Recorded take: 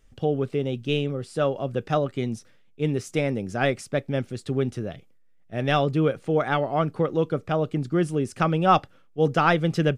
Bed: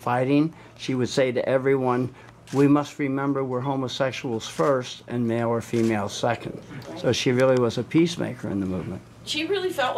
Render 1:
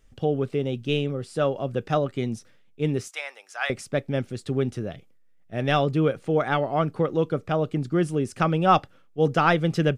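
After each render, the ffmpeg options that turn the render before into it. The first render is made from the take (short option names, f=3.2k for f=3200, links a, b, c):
-filter_complex "[0:a]asettb=1/sr,asplit=3[a][b][c];[a]atrim=end=3.084[d];[b]atrim=start=3.08:end=3.7,asetpts=PTS-STARTPTS,afade=t=in:d=0.004:c=qsin,afade=t=out:st=0.616:d=0.004:c=qsin,highpass=f=860:w=0.5412,highpass=f=860:w=1.3066[e];[c]atrim=start=3.696[f];[d][e]acrossfade=d=0.004:c1=hsin:c2=qsin[g];[g][f]acrossfade=d=0.004:c1=qsin:c2=hsin"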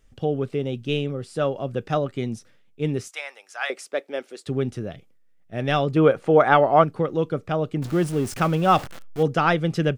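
-filter_complex "[0:a]asettb=1/sr,asplit=3[a][b][c];[a]atrim=end=3.624[d];[b]atrim=start=3.62:end=4.47,asetpts=PTS-STARTPTS,afade=t=in:d=0.004:c=qsin,afade=t=out:st=0.846:d=0.004:c=qsin,highpass=f=360:w=0.5412,highpass=f=360:w=1.3066[e];[c]atrim=start=4.466[f];[d][e]acrossfade=d=0.004:c1=hsin:c2=qsin[g];[g][f]acrossfade=d=0.004:c1=qsin:c2=hsin,asettb=1/sr,asplit=3[h][i][j];[h]atrim=end=5.964[k];[i]atrim=start=5.96:end=6.84,asetpts=PTS-STARTPTS,afade=t=in:d=0.004:c=qsin,afade=t=out:st=0.876:d=0.004:c=qsin,equalizer=f=860:w=0.44:g=9.5[l];[j]atrim=start=6.836[m];[k][l]acrossfade=d=0.004:c1=hsin:c2=qsin[n];[n][m]acrossfade=d=0.004:c1=qsin:c2=hsin,asettb=1/sr,asplit=3[o][p][q];[o]atrim=end=7.824[r];[p]atrim=start=7.82:end=9.23,asetpts=PTS-STARTPTS,afade=t=in:d=0.004:c=qsin,afade=t=out:st=1.406:d=0.004:c=qsin,aeval=exprs='val(0)+0.5*0.0266*sgn(val(0))':c=same[s];[q]atrim=start=9.226[t];[r][s]acrossfade=d=0.004:c1=hsin:c2=qsin[u];[u][t]acrossfade=d=0.004:c1=qsin:c2=hsin"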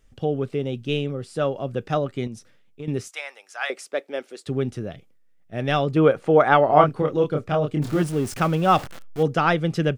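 -filter_complex "[0:a]asettb=1/sr,asplit=3[a][b][c];[a]atrim=end=2.274[d];[b]atrim=start=2.27:end=2.88,asetpts=PTS-STARTPTS,afade=t=in:d=0.004:c=qsin,afade=t=out:st=0.606:d=0.004:c=qsin,acompressor=threshold=-31dB:ratio=5:attack=3.2:release=140:knee=1:detection=peak[e];[c]atrim=start=2.876[f];[d][e]acrossfade=d=0.004:c1=hsin:c2=qsin[g];[g][f]acrossfade=d=0.004:c1=qsin:c2=hsin,asettb=1/sr,asplit=3[h][i][j];[h]atrim=end=6.664[k];[i]atrim=start=6.66:end=8.02,asetpts=PTS-STARTPTS,afade=t=in:d=0.004:c=qsin,afade=t=out:st=1.356:d=0.004:c=qsin,asplit=2[l][m];[m]adelay=27,volume=-3dB[n];[l][n]amix=inputs=2:normalize=0,atrim=end_sample=59976[o];[j]atrim=start=8.016[p];[k][o]acrossfade=d=0.004:c1=hsin:c2=qsin[q];[q][p]acrossfade=d=0.004:c1=qsin:c2=hsin"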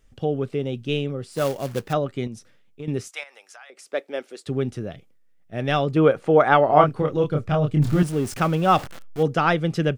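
-filter_complex "[0:a]asettb=1/sr,asplit=3[a][b][c];[a]atrim=end=1.324[d];[b]atrim=start=1.32:end=1.93,asetpts=PTS-STARTPTS,afade=t=in:d=0.004:c=qsin,afade=t=out:st=0.606:d=0.004:c=qsin,acrusher=bits=3:mode=log:mix=0:aa=0.000001[e];[c]atrim=start=1.926[f];[d][e]acrossfade=d=0.004:c1=hsin:c2=qsin[g];[g][f]acrossfade=d=0.004:c1=qsin:c2=hsin,asettb=1/sr,asplit=3[h][i][j];[h]atrim=end=3.234[k];[i]atrim=start=3.23:end=3.92,asetpts=PTS-STARTPTS,afade=t=in:d=0.004:c=qsin,afade=t=out:st=0.686:d=0.004:c=qsin,acompressor=threshold=-41dB:ratio=10:attack=3.2:release=140:knee=1:detection=peak[l];[j]atrim=start=3.916[m];[k][l]acrossfade=d=0.004:c1=hsin:c2=qsin[n];[n][m]acrossfade=d=0.004:c1=qsin:c2=hsin,asettb=1/sr,asplit=3[o][p][q];[o]atrim=end=6.764[r];[p]atrim=start=6.76:end=8.03,asetpts=PTS-STARTPTS,afade=t=in:d=0.004:c=qsin,afade=t=out:st=1.266:d=0.004:c=qsin,asubboost=boost=8.5:cutoff=180[s];[q]atrim=start=8.026[t];[r][s]acrossfade=d=0.004:c1=hsin:c2=qsin[u];[u][t]acrossfade=d=0.004:c1=qsin:c2=hsin"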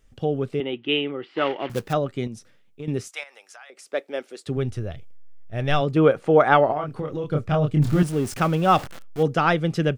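-filter_complex "[0:a]asettb=1/sr,asplit=3[a][b][c];[a]atrim=end=0.604[d];[b]atrim=start=0.6:end=1.7,asetpts=PTS-STARTPTS,afade=t=in:d=0.004:c=qsin,afade=t=out:st=1.096:d=0.004:c=qsin,highpass=290,equalizer=f=330:t=q:w=4:g=10,equalizer=f=560:t=q:w=4:g=-4,equalizer=f=870:t=q:w=4:g=7,equalizer=f=1.3k:t=q:w=4:g=4,equalizer=f=2k:t=q:w=4:g=10,equalizer=f=3k:t=q:w=4:g=10,lowpass=f=3.3k:w=0.5412,lowpass=f=3.3k:w=1.3066[e];[c]atrim=start=1.696[f];[d][e]acrossfade=d=0.004:c1=hsin:c2=qsin[g];[g][f]acrossfade=d=0.004:c1=qsin:c2=hsin,asplit=3[h][i][j];[h]afade=t=out:st=4.56:d=0.02[k];[i]asubboost=boost=9.5:cutoff=68,afade=t=in:st=4.56:d=0.02,afade=t=out:st=5.8:d=0.02[l];[j]afade=t=in:st=5.8:d=0.02[m];[k][l][m]amix=inputs=3:normalize=0,asettb=1/sr,asplit=3[n][o][p];[n]atrim=end=6.724[q];[o]atrim=start=6.72:end=7.3,asetpts=PTS-STARTPTS,afade=t=in:d=0.004:c=qsin,afade=t=out:st=0.576:d=0.004:c=qsin,acompressor=threshold=-25dB:ratio=4:attack=3.2:release=140:knee=1:detection=peak[r];[p]atrim=start=7.296[s];[q][r]acrossfade=d=0.004:c1=hsin:c2=qsin[t];[t][s]acrossfade=d=0.004:c1=qsin:c2=hsin"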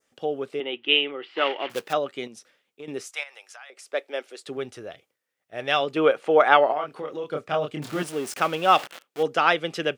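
-af "highpass=420,adynamicequalizer=threshold=0.0112:dfrequency=2900:dqfactor=1.4:tfrequency=2900:tqfactor=1.4:attack=5:release=100:ratio=0.375:range=3:mode=boostabove:tftype=bell"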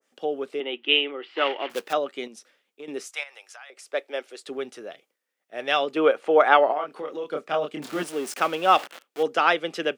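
-af "highpass=f=200:w=0.5412,highpass=f=200:w=1.3066,adynamicequalizer=threshold=0.02:dfrequency=2000:dqfactor=0.7:tfrequency=2000:tqfactor=0.7:attack=5:release=100:ratio=0.375:range=1.5:mode=cutabove:tftype=highshelf"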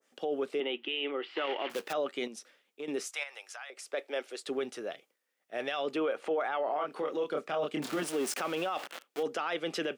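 -af "acompressor=threshold=-21dB:ratio=6,alimiter=limit=-24dB:level=0:latency=1:release=14"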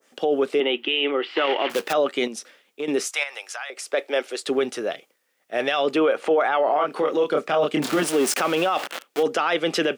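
-af "volume=11.5dB"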